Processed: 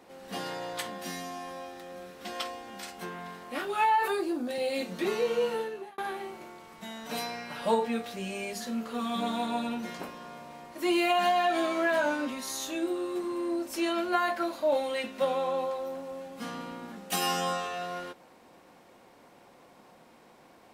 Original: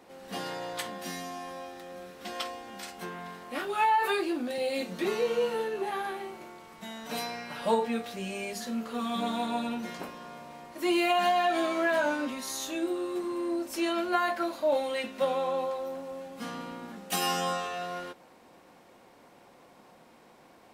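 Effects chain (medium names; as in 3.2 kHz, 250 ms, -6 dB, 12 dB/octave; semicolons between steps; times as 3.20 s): 4.08–4.49 s: peaking EQ 2.6 kHz -9.5 dB 1.4 oct; 5.54–5.98 s: fade out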